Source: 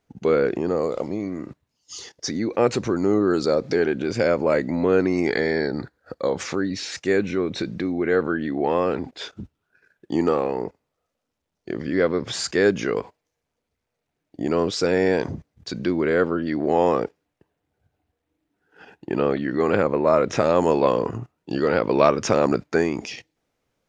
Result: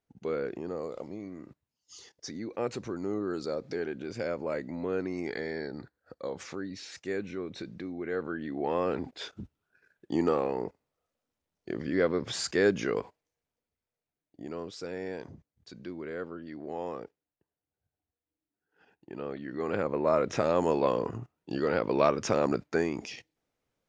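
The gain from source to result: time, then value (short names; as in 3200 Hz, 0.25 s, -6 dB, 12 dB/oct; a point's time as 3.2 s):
8.1 s -13 dB
9.01 s -6 dB
13 s -6 dB
14.67 s -17.5 dB
19.12 s -17.5 dB
20.05 s -7.5 dB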